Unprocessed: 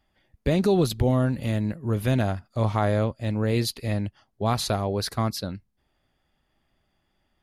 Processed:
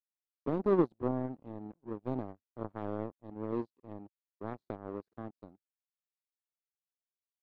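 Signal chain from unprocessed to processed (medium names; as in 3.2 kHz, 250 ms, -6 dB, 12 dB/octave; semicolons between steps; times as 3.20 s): band-pass filter 320 Hz, Q 2.6; power-law waveshaper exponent 2; trim +2.5 dB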